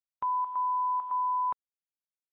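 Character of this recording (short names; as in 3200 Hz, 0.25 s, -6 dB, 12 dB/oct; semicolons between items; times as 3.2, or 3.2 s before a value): chopped level 1.8 Hz, depth 65%, duty 80%; a quantiser's noise floor 12-bit, dither none; AAC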